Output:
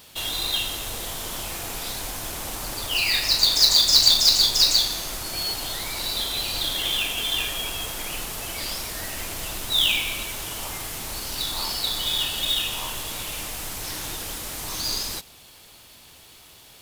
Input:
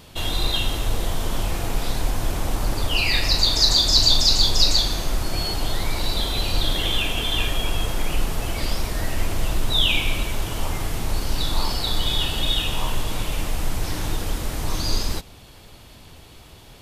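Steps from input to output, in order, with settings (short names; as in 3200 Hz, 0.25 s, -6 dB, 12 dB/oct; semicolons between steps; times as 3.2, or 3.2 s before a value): tilt +2.5 dB/oct; companded quantiser 4-bit; gain -4.5 dB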